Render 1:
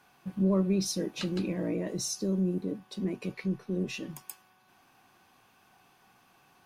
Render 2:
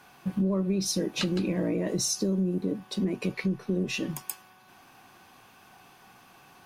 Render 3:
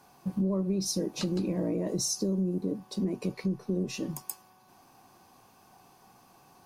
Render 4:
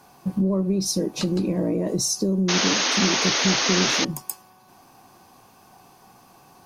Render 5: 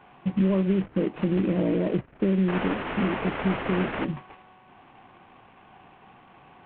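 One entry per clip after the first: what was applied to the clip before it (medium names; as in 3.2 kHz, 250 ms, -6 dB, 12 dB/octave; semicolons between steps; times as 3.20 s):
compression 6:1, threshold -32 dBFS, peak gain reduction 10 dB; trim +8 dB
high-order bell 2.2 kHz -8.5 dB; trim -2 dB
painted sound noise, 2.48–4.05 s, 240–6700 Hz -29 dBFS; trim +6.5 dB
CVSD coder 16 kbps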